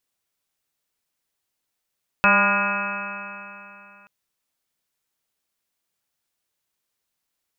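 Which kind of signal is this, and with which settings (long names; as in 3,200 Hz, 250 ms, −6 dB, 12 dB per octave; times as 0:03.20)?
stiff-string partials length 1.83 s, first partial 198 Hz, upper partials −14/−1/−2.5/2.5/2/6/−2.5/−6/−18.5/−5/5.5 dB, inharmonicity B 0.0012, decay 2.96 s, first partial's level −23 dB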